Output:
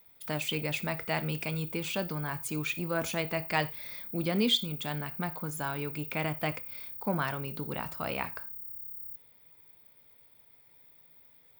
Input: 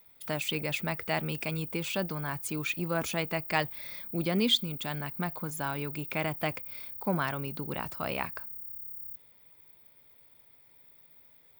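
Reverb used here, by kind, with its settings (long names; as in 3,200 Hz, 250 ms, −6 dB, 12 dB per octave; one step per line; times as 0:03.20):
reverb whose tail is shaped and stops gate 130 ms falling, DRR 11 dB
level −1 dB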